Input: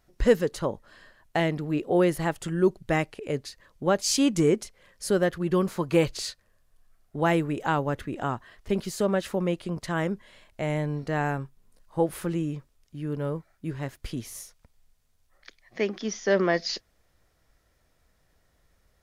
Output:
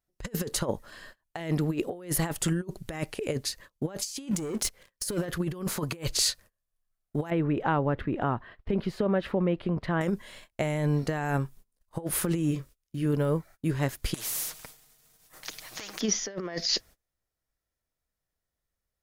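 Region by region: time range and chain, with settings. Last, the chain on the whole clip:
4.31–5.26 sample leveller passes 2 + compressor 3:1, threshold -26 dBFS
7.3–10.01 air absorption 410 m + compressor 2:1, threshold -29 dBFS
12.48–13.06 bell 850 Hz -11 dB 0.24 oct + doubler 30 ms -9 dB
14.14–16.01 comb 6.4 ms, depth 56% + compressor 10:1, threshold -34 dBFS + spectral compressor 4:1
whole clip: high shelf 7000 Hz +10 dB; negative-ratio compressor -29 dBFS, ratio -0.5; gate -48 dBFS, range -26 dB; gain +1.5 dB

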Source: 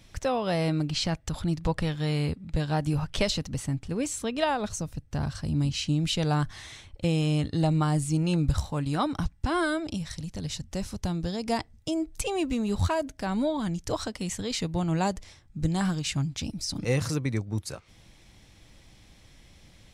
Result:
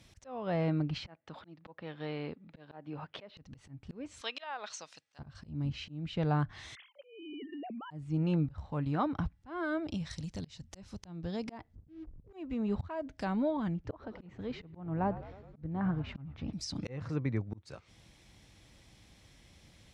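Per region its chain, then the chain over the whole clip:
1.07–3.37 HPF 300 Hz + air absorption 350 m
4.21–5.19 BPF 790–5000 Hz + high shelf 2200 Hz +11 dB
6.75–7.91 sine-wave speech + compressor 8:1, threshold -37 dBFS
11.75–12.33 ladder low-pass 230 Hz, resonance 25% + low shelf 94 Hz +9.5 dB + sample leveller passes 3
13.74–16.53 LPF 1700 Hz + frequency-shifting echo 0.105 s, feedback 65%, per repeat -62 Hz, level -15 dB
whole clip: HPF 44 Hz; treble ducked by the level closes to 2000 Hz, closed at -25 dBFS; auto swell 0.318 s; gain -4 dB

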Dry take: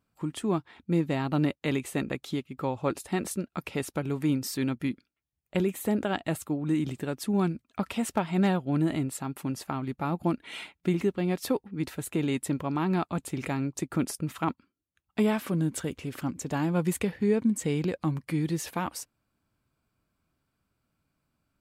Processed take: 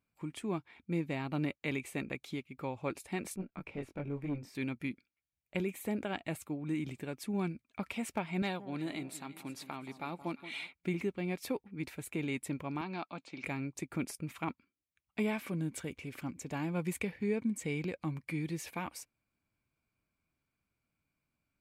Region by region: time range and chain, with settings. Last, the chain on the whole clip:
3.36–4.55 LPF 1100 Hz 6 dB/oct + doubler 21 ms -2.5 dB + tube stage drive 21 dB, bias 0.35
8.42–10.73 HPF 320 Hz 6 dB/oct + bell 3900 Hz +8.5 dB 0.41 oct + echo with dull and thin repeats by turns 0.174 s, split 1100 Hz, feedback 63%, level -13 dB
12.81–13.44 hard clip -17.5 dBFS + speaker cabinet 270–5500 Hz, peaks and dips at 410 Hz -8 dB, 1900 Hz -5 dB, 4300 Hz +6 dB
whole clip: bell 2300 Hz +11.5 dB 0.26 oct; notch 1300 Hz, Q 24; gain -8.5 dB

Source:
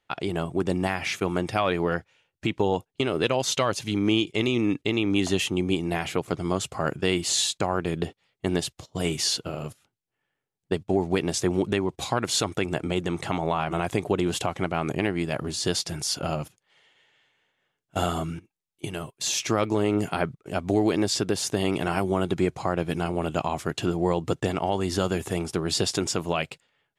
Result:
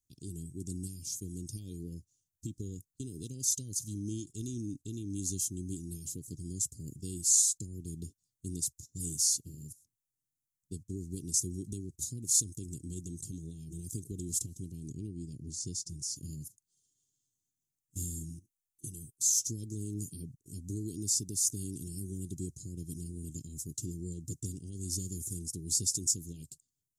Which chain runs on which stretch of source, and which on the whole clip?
14.88–16.16 LPF 5400 Hz + dynamic EQ 3700 Hz, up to -5 dB, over -44 dBFS, Q 1.2
whole clip: elliptic band-stop 230–6400 Hz, stop band 60 dB; high shelf 3500 Hz +11.5 dB; comb 2.5 ms, depth 54%; gain -7 dB

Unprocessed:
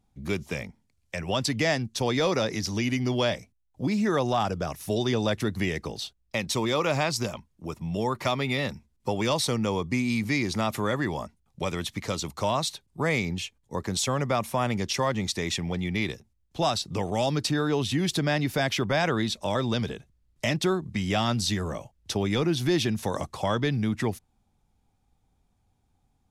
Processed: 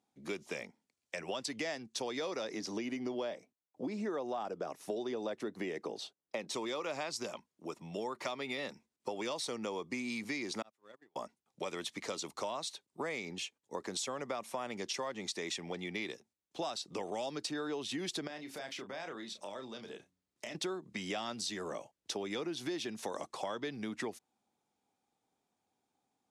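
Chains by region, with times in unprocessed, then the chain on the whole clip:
2.53–6.54 HPF 220 Hz 6 dB/oct + tilt shelf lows +6 dB, about 1300 Hz
10.62–11.16 zero-crossing step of -40.5 dBFS + gate -22 dBFS, range -47 dB + three-band squash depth 40%
18.27–20.55 de-hum 91.33 Hz, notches 3 + compressor 4:1, threshold -37 dBFS + doubler 31 ms -8 dB
whole clip: Chebyshev band-pass 340–8800 Hz, order 2; compressor, threshold -31 dBFS; gain -4 dB

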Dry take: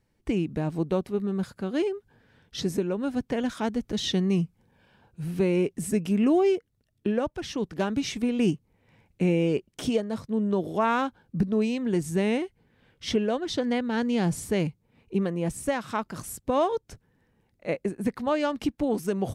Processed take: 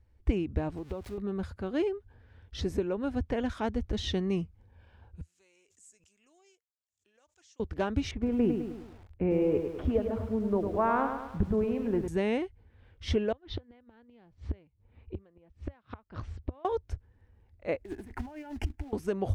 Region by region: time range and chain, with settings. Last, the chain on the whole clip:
0.77–1.18 switching spikes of -27 dBFS + high shelf 5200 Hz -10 dB + compressor 5:1, threshold -30 dBFS
5.21–7.6 band-pass 7100 Hz, Q 6.4 + backwards sustainer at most 130 dB/s
8.11–12.08 LPF 1500 Hz + lo-fi delay 0.104 s, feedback 55%, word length 8-bit, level -6.5 dB
13.32–16.65 LPF 4200 Hz 24 dB/oct + flipped gate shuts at -21 dBFS, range -29 dB
17.8–18.93 negative-ratio compressor -36 dBFS + fixed phaser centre 780 Hz, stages 8 + short-mantissa float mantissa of 2-bit
whole clip: LPF 2500 Hz 6 dB/oct; resonant low shelf 110 Hz +11 dB, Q 3; gain -1.5 dB

